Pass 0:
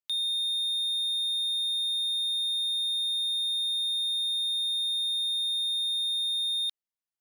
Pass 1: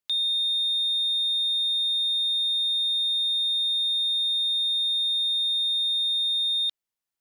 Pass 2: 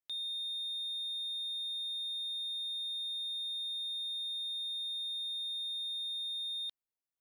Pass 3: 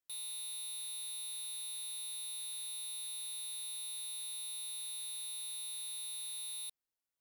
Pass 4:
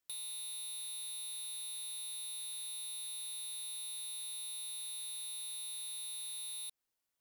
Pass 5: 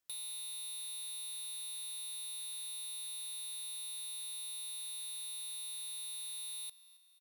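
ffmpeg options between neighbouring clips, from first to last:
ffmpeg -i in.wav -filter_complex "[0:a]acrossover=split=6800[link_01][link_02];[link_02]acompressor=threshold=-57dB:ratio=4:attack=1:release=60[link_03];[link_01][link_03]amix=inputs=2:normalize=0,volume=4.5dB" out.wav
ffmpeg -i in.wav -af "equalizer=frequency=4200:width=0.36:gain=-6.5,volume=-7dB" out.wav
ffmpeg -i in.wav -af "aeval=exprs='(mod(84.1*val(0)+1,2)-1)/84.1':channel_layout=same" out.wav
ffmpeg -i in.wav -af "acompressor=threshold=-46dB:ratio=6,volume=4.5dB" out.wav
ffmpeg -i in.wav -af "aecho=1:1:271|542|813|1084:0.119|0.063|0.0334|0.0177" out.wav

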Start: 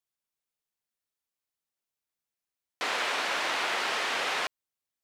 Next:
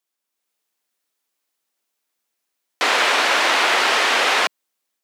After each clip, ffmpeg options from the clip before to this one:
ffmpeg -i in.wav -af "highpass=frequency=210:width=0.5412,highpass=frequency=210:width=1.3066,dynaudnorm=framelen=260:gausssize=3:maxgain=5dB,volume=7.5dB" out.wav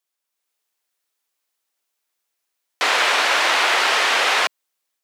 ffmpeg -i in.wav -af "equalizer=frequency=150:width=0.59:gain=-9" out.wav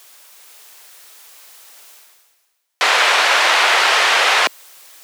ffmpeg -i in.wav -af "highpass=390,areverse,acompressor=mode=upward:threshold=-23dB:ratio=2.5,areverse,volume=4dB" out.wav

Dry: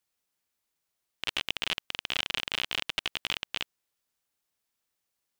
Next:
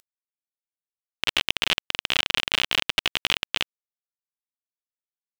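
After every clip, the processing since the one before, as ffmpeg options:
ffmpeg -i in.wav -filter_complex "[0:a]asplit=2[link_01][link_02];[link_02]acompressor=mode=upward:threshold=-35dB:ratio=2.5,volume=-2.5dB[link_03];[link_01][link_03]amix=inputs=2:normalize=0,acrusher=bits=6:mix=0:aa=0.000001,volume=3dB" out.wav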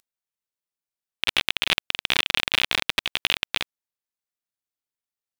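ffmpeg -i in.wav -af "acontrast=30,aeval=exprs='val(0)*sin(2*PI*360*n/s)':channel_layout=same" out.wav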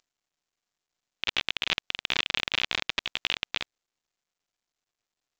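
ffmpeg -i in.wav -af "volume=-5.5dB" -ar 16000 -c:a pcm_mulaw out.wav

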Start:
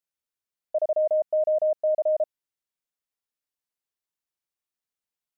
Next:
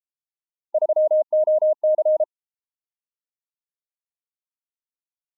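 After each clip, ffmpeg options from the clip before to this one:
ffmpeg -i in.wav -af "afftfilt=real='re*gte(hypot(re,im),0.00501)':imag='im*gte(hypot(re,im),0.00501)':win_size=1024:overlap=0.75,lowshelf=frequency=340:gain=-11.5,volume=7.5dB" out.wav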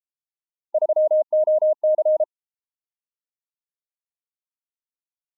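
ffmpeg -i in.wav -af anull out.wav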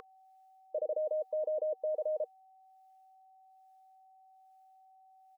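ffmpeg -i in.wav -filter_complex "[0:a]acrossover=split=620[link_01][link_02];[link_01]aeval=exprs='val(0)*(1-0.7/2+0.7/2*cos(2*PI*1.2*n/s))':channel_layout=same[link_03];[link_02]aeval=exprs='val(0)*(1-0.7/2-0.7/2*cos(2*PI*1.2*n/s))':channel_layout=same[link_04];[link_03][link_04]amix=inputs=2:normalize=0,aeval=exprs='val(0)+0.02*sin(2*PI*760*n/s)':channel_layout=same,firequalizer=gain_entry='entry(300,0);entry(470,13);entry(730,-25);entry(1100,12)':delay=0.05:min_phase=1,volume=-3dB" out.wav

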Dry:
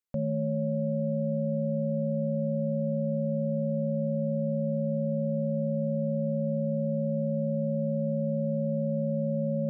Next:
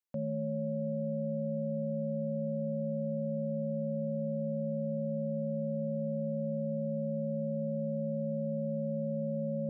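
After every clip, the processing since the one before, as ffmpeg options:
ffmpeg -i in.wav -af "highpass=140,volume=-4.5dB" out.wav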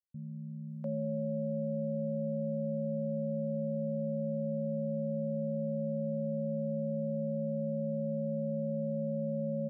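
ffmpeg -i in.wav -filter_complex "[0:a]acrossover=split=190[link_01][link_02];[link_02]adelay=700[link_03];[link_01][link_03]amix=inputs=2:normalize=0" out.wav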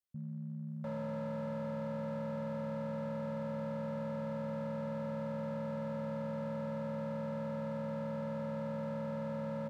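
ffmpeg -i in.wav -af "asoftclip=type=hard:threshold=-36.5dB" out.wav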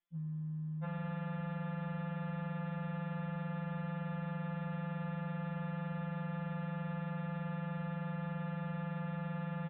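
ffmpeg -i in.wav -af "aresample=8000,aresample=44100,afftfilt=real='re*2.83*eq(mod(b,8),0)':imag='im*2.83*eq(mod(b,8),0)':win_size=2048:overlap=0.75,volume=7dB" out.wav

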